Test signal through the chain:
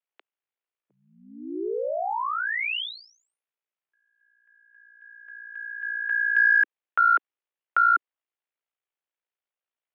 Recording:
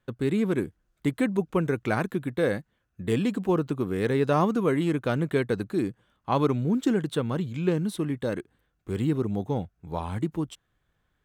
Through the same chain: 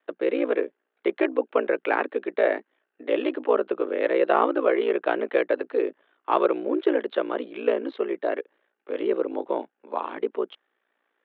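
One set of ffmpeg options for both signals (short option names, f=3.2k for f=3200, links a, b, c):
-af "highpass=f=250:t=q:w=0.5412,highpass=f=250:t=q:w=1.307,lowpass=f=3.1k:t=q:w=0.5176,lowpass=f=3.1k:t=q:w=0.7071,lowpass=f=3.1k:t=q:w=1.932,afreqshift=92,aeval=exprs='val(0)*sin(2*PI*29*n/s)':c=same,acontrast=72"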